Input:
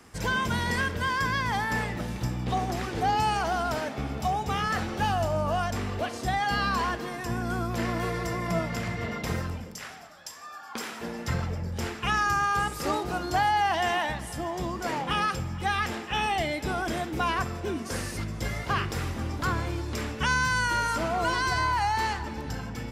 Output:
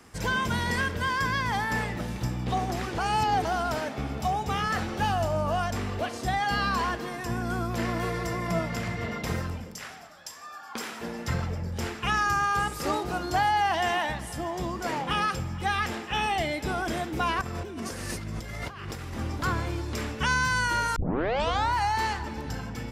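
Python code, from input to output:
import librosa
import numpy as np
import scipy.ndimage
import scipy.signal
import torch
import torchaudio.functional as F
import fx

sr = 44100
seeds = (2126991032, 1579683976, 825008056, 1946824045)

y = fx.over_compress(x, sr, threshold_db=-36.0, ratio=-1.0, at=(17.41, 19.14))
y = fx.edit(y, sr, fx.reverse_span(start_s=2.98, length_s=0.47),
    fx.tape_start(start_s=20.96, length_s=0.78), tone=tone)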